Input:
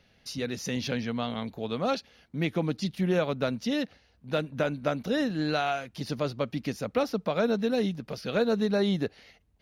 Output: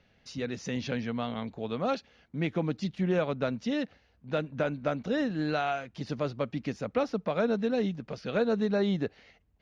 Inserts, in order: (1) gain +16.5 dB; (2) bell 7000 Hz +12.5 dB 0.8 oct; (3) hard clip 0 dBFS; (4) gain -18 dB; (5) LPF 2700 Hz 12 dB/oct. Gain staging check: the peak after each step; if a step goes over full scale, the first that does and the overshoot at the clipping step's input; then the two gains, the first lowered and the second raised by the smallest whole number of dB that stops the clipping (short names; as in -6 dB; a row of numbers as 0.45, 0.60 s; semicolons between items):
+4.0, +4.5, 0.0, -18.0, -17.5 dBFS; step 1, 4.5 dB; step 1 +11.5 dB, step 4 -13 dB